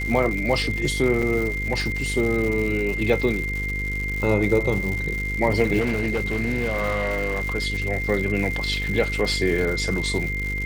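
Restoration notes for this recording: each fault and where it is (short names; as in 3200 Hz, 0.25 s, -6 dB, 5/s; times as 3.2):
buzz 50 Hz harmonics 10 -29 dBFS
crackle 190/s -27 dBFS
tone 2100 Hz -27 dBFS
1.22–1.23 gap 5.8 ms
5.8–7.42 clipped -19 dBFS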